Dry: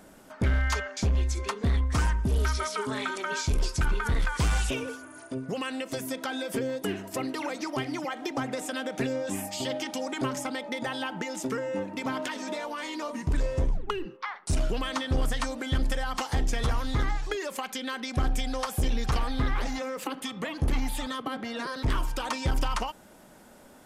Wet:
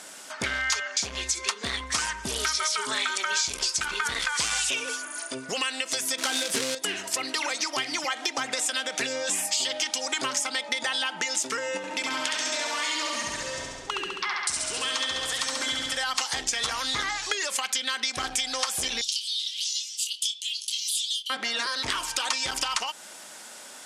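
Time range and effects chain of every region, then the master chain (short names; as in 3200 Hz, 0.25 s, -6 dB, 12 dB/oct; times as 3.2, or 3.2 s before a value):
6.18–6.75 low shelf 490 Hz +12 dB + companded quantiser 4-bit
11.77–15.97 compressor 2.5:1, threshold -35 dBFS + flutter echo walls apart 11.7 m, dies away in 1.4 s
19.01–21.3 Chebyshev high-pass 3000 Hz, order 5 + doubler 26 ms -7.5 dB
whole clip: weighting filter ITU-R 468; compressor 3:1, threshold -33 dBFS; gain +7 dB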